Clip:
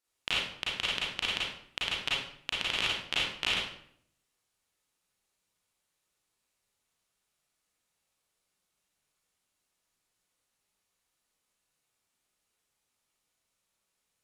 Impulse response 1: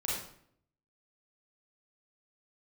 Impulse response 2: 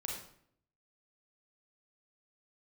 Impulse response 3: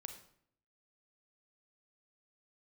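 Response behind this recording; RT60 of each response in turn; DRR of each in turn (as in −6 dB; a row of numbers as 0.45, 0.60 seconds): 1; 0.65, 0.65, 0.65 seconds; −6.5, −2.0, 6.0 decibels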